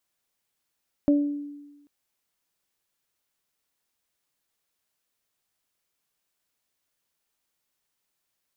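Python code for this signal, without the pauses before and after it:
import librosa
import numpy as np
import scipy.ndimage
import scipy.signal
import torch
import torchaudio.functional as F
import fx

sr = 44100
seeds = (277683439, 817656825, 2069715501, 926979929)

y = fx.additive(sr, length_s=0.79, hz=289.0, level_db=-15, upper_db=(-8.0,), decay_s=1.16, upper_decays_s=(0.44,))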